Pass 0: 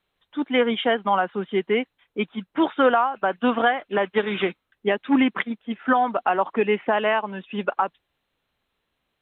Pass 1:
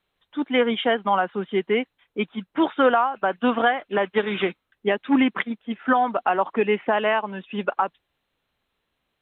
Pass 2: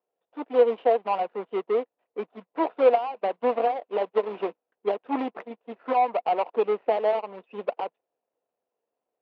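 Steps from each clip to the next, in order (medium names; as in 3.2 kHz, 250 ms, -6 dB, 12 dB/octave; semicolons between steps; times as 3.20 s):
no audible change
median filter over 41 samples; cabinet simulation 430–3200 Hz, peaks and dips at 480 Hz +9 dB, 700 Hz +8 dB, 1 kHz +8 dB, 1.6 kHz -5 dB; trim -2.5 dB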